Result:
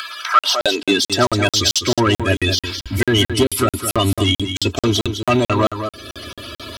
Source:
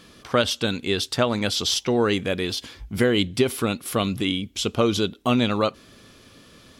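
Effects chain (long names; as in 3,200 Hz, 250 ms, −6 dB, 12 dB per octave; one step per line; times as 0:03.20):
spectral magnitudes quantised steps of 30 dB
in parallel at +2.5 dB: upward compression, threshold −25 dBFS
on the sum: soft clipping −10 dBFS, distortion −13 dB
parametric band 11,000 Hz +2 dB 1.6 octaves
comb filter 3.1 ms, depth 77%
on a send: single-tap delay 206 ms −8.5 dB
on the sum: high-pass filter sweep 1,400 Hz → 83 Hz, 0:00.33–0:01.28
parametric band 200 Hz −3.5 dB 1.4 octaves
regular buffer underruns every 0.22 s, samples 2,048, zero, from 0:00.39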